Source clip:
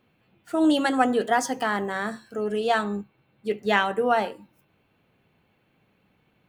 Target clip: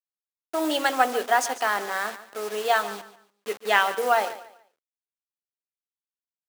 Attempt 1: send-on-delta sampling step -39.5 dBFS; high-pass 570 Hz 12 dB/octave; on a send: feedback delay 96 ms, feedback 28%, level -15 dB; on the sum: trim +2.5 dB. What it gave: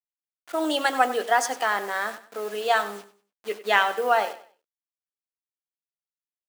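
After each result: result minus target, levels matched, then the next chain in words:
echo 48 ms early; send-on-delta sampling: distortion -9 dB
send-on-delta sampling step -39.5 dBFS; high-pass 570 Hz 12 dB/octave; on a send: feedback delay 144 ms, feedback 28%, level -15 dB; on the sum: trim +2.5 dB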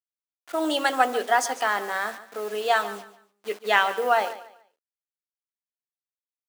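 send-on-delta sampling: distortion -9 dB
send-on-delta sampling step -32.5 dBFS; high-pass 570 Hz 12 dB/octave; on a send: feedback delay 144 ms, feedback 28%, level -15 dB; on the sum: trim +2.5 dB

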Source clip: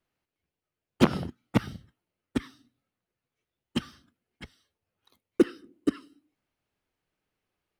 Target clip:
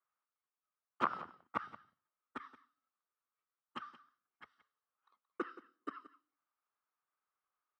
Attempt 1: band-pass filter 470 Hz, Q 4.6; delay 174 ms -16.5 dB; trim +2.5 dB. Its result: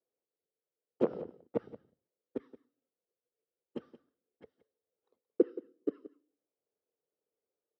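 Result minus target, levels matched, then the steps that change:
1 kHz band -19.0 dB
change: band-pass filter 1.2 kHz, Q 4.6

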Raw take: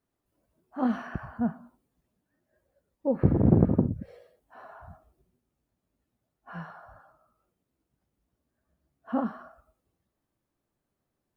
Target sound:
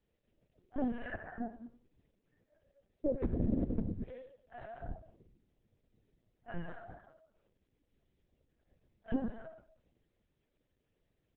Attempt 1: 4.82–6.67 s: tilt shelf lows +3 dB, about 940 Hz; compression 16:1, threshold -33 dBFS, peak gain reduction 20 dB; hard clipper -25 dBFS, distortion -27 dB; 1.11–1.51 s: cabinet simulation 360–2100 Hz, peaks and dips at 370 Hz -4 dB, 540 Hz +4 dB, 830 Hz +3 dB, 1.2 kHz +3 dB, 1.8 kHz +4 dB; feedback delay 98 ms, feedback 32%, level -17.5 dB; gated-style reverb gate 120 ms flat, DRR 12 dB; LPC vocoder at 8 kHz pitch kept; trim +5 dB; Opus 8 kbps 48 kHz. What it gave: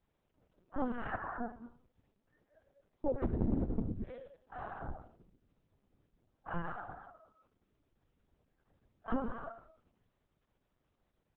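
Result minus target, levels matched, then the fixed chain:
1 kHz band +8.0 dB
4.82–6.67 s: tilt shelf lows +3 dB, about 940 Hz; compression 16:1, threshold -33 dBFS, peak gain reduction 20 dB; Butterworth band-stop 1.1 kHz, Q 1.2; hard clipper -25 dBFS, distortion -27 dB; 1.11–1.51 s: cabinet simulation 360–2100 Hz, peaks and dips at 370 Hz -4 dB, 540 Hz +4 dB, 830 Hz +3 dB, 1.2 kHz +3 dB, 1.8 kHz +4 dB; feedback delay 98 ms, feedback 32%, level -17.5 dB; gated-style reverb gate 120 ms flat, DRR 12 dB; LPC vocoder at 8 kHz pitch kept; trim +5 dB; Opus 8 kbps 48 kHz

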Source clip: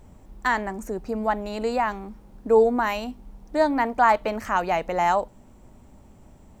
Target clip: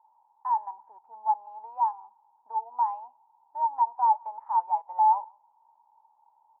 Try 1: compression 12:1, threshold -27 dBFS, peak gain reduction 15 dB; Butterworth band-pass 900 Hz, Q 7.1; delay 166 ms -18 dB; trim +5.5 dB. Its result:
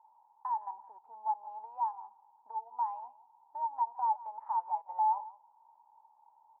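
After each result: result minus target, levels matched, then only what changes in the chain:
compression: peak gain reduction +8.5 dB; echo-to-direct +11.5 dB
change: compression 12:1, threshold -18 dBFS, peak gain reduction 6.5 dB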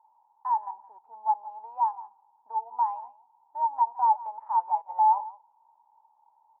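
echo-to-direct +11.5 dB
change: delay 166 ms -29.5 dB

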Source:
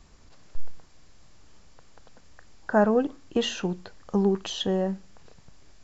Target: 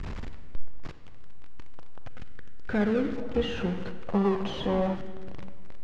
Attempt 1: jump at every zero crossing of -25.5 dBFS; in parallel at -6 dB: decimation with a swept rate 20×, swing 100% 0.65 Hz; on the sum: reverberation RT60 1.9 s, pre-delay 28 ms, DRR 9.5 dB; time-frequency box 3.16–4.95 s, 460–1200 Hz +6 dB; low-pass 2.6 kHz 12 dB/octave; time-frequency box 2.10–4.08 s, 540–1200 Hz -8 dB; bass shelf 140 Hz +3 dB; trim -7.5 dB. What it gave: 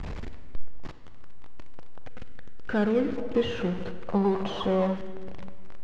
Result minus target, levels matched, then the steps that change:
decimation with a swept rate: distortion -7 dB
change: decimation with a swept rate 56×, swing 100% 0.65 Hz

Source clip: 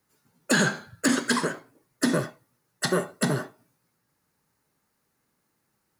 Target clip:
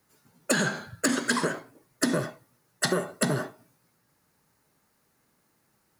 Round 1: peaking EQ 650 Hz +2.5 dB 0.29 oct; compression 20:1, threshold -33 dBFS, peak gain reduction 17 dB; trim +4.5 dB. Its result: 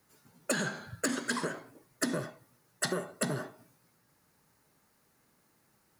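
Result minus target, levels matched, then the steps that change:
compression: peak gain reduction +7 dB
change: compression 20:1, threshold -25.5 dBFS, peak gain reduction 9.5 dB

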